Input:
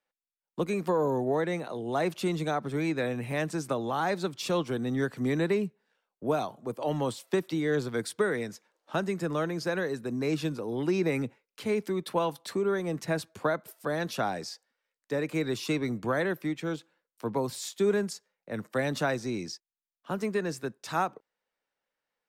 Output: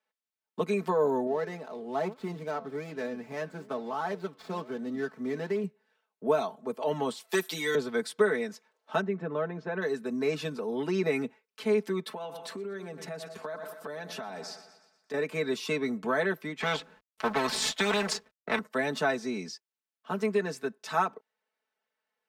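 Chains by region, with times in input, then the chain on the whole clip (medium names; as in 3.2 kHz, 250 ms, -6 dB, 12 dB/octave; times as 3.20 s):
1.27–5.64 s: median filter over 15 samples + flange 1.1 Hz, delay 3.3 ms, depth 8.7 ms, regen +87%
7.29–7.75 s: RIAA curve recording + comb 5.8 ms, depth 96% + hard clipper -20.5 dBFS
9.01–9.82 s: tape spacing loss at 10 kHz 35 dB + band-stop 4.8 kHz, Q 6
12.09–15.14 s: two-band feedback delay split 1.1 kHz, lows 91 ms, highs 119 ms, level -14.5 dB + compression 10:1, threshold -35 dBFS
16.60–18.59 s: companding laws mixed up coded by A + RIAA curve playback + spectrum-flattening compressor 4:1
whole clip: high-pass 290 Hz 6 dB/octave; treble shelf 5.7 kHz -8 dB; comb 4.6 ms, depth 87%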